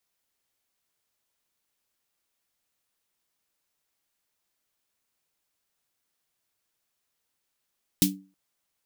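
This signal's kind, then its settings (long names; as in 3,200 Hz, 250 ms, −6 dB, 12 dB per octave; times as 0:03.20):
synth snare length 0.32 s, tones 190 Hz, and 290 Hz, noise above 2,700 Hz, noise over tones 1.5 dB, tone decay 0.36 s, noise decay 0.16 s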